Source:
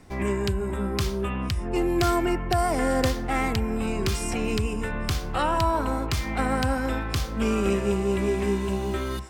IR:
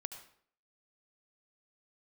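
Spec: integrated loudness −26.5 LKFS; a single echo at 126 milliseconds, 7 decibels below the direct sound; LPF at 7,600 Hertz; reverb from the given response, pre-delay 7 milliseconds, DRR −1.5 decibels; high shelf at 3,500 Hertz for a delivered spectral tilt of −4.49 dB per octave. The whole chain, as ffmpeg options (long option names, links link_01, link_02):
-filter_complex "[0:a]lowpass=7600,highshelf=frequency=3500:gain=7,aecho=1:1:126:0.447,asplit=2[link_01][link_02];[1:a]atrim=start_sample=2205,adelay=7[link_03];[link_02][link_03]afir=irnorm=-1:irlink=0,volume=4dB[link_04];[link_01][link_04]amix=inputs=2:normalize=0,volume=-4.5dB"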